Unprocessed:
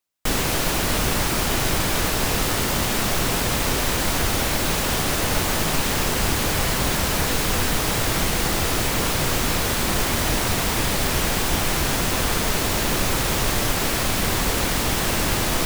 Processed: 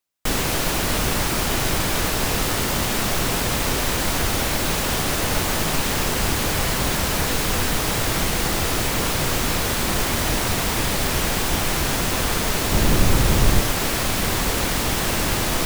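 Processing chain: 12.72–13.61 s: bass shelf 280 Hz +9.5 dB

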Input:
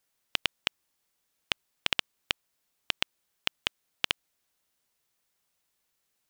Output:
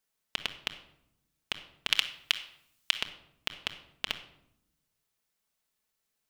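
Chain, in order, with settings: 1.88–2.96 s: tilt shelf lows -9.5 dB, about 920 Hz; reverberation RT60 0.75 s, pre-delay 5 ms, DRR 5.5 dB; trim -5 dB

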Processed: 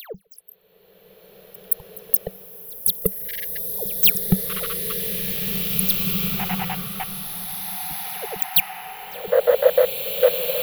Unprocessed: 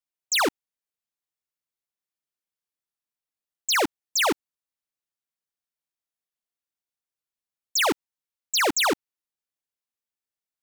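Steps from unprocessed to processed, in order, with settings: slices played last to first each 172 ms, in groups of 3; band-stop 2.1 kHz, Q 19; waveshaping leveller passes 5; spectral replace 9.31–10.26 s, 480–2100 Hz before; trance gate "...x.x.x.x.." 198 bpm -24 dB; ever faster or slower copies 172 ms, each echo +7 st, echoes 3; bass shelf 74 Hz +11 dB; spectral noise reduction 27 dB; FFT filter 110 Hz 0 dB, 190 Hz +14 dB, 270 Hz -29 dB, 440 Hz +8 dB, 930 Hz -16 dB, 3.3 kHz -9 dB, 7.8 kHz -25 dB, 12 kHz +6 dB; upward compressor, threshold -47 dBFS; pre-echo 173 ms -22.5 dB; swelling reverb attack 2090 ms, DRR 0 dB; trim +8 dB

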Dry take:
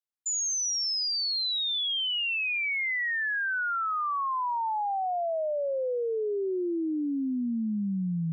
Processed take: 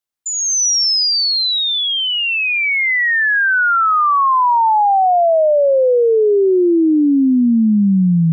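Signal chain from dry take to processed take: dynamic bell 3.1 kHz, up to -6 dB, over -43 dBFS, Q 1; level rider gain up to 9.5 dB; trim +7.5 dB

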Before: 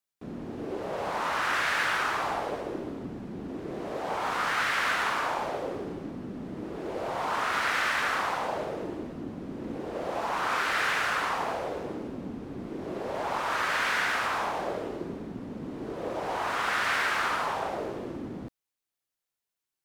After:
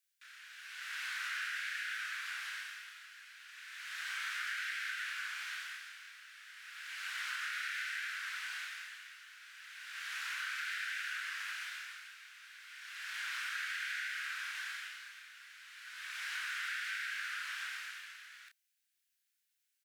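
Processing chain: Chebyshev high-pass 1.5 kHz, order 5; compression 12:1, threshold -43 dBFS, peak gain reduction 17.5 dB; doubling 30 ms -5 dB; hard clipper -33 dBFS, distortion -54 dB; trim +5 dB

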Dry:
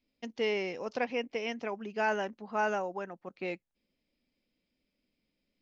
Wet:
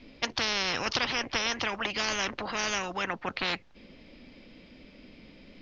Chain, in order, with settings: Bessel low-pass 3.5 kHz, order 8; spectrum-flattening compressor 10:1; trim +6 dB

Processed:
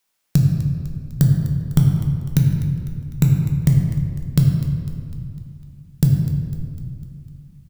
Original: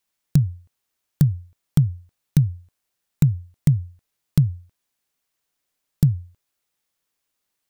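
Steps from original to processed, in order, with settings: bass shelf 220 Hz -6.5 dB; frequency-shifting echo 251 ms, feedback 55%, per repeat -60 Hz, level -15 dB; reverberation RT60 2.2 s, pre-delay 7 ms, DRR 0 dB; trim +5 dB

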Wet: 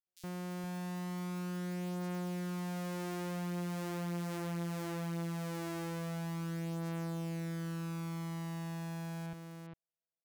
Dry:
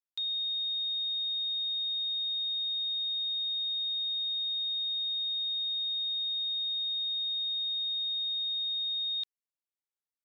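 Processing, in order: sorted samples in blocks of 256 samples; Doppler pass-by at 4.15 s, 14 m/s, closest 18 m; on a send: delay 403 ms -6 dB; on the sum: compression, threshold -39 dBFS, peak gain reduction 10 dB; bands offset in time highs, lows 70 ms, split 3.5 kHz; trim +2.5 dB

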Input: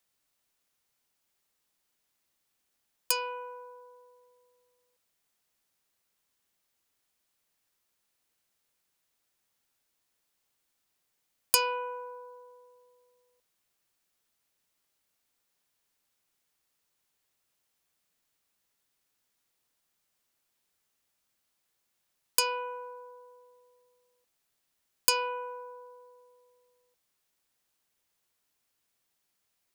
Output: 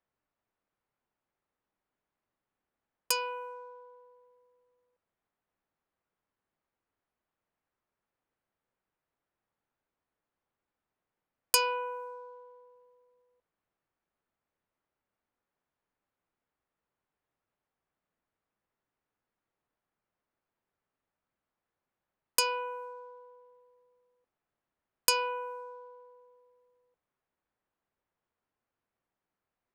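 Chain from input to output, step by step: level-controlled noise filter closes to 1.4 kHz, open at -35.5 dBFS

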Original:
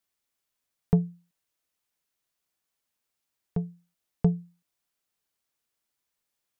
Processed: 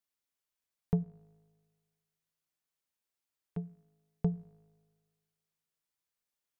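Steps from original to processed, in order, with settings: 1.03–3.57 s: compression, threshold -42 dBFS, peak gain reduction 9.5 dB; feedback comb 53 Hz, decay 1.6 s, harmonics all, mix 40%; trim -3.5 dB

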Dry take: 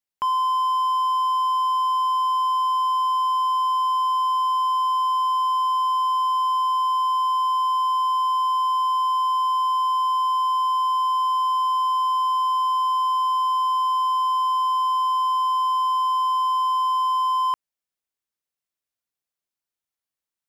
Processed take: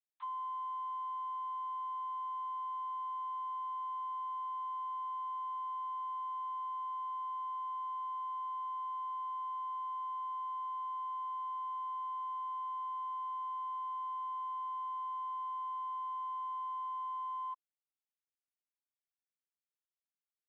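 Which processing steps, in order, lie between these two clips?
median filter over 15 samples; LPC vocoder at 8 kHz pitch kept; high-pass 890 Hz 24 dB/octave; differentiator; trim +1 dB

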